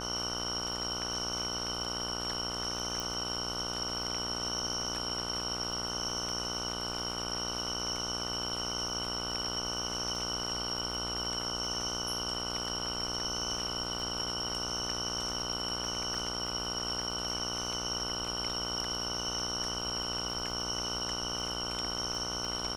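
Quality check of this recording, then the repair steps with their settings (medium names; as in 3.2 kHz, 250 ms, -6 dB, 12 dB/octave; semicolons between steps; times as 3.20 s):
buzz 60 Hz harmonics 25 -40 dBFS
crackle 32 per s -41 dBFS
3.00 s: pop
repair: de-click; de-hum 60 Hz, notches 25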